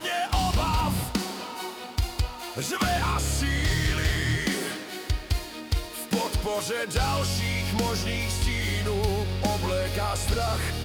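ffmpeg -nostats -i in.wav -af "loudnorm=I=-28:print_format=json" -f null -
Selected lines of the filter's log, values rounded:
"input_i" : "-27.3",
"input_tp" : "-11.8",
"input_lra" : "1.1",
"input_thresh" : "-37.3",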